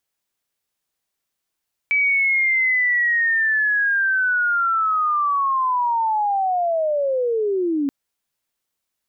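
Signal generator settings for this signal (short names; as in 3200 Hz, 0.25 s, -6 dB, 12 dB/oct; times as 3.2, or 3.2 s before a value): chirp linear 2300 Hz -> 270 Hz -15 dBFS -> -18 dBFS 5.98 s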